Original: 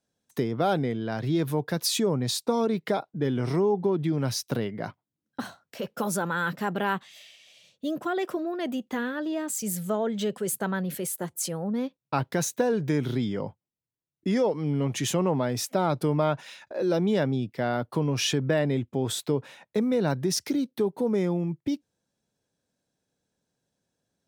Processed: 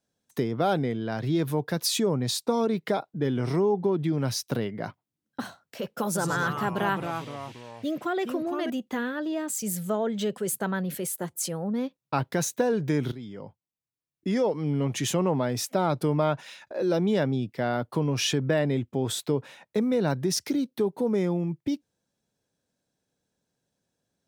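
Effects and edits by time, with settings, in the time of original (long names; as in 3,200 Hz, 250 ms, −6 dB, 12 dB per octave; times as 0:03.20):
0:06.07–0:08.70: delay with pitch and tempo change per echo 83 ms, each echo −3 semitones, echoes 3, each echo −6 dB
0:13.12–0:14.56: fade in linear, from −14.5 dB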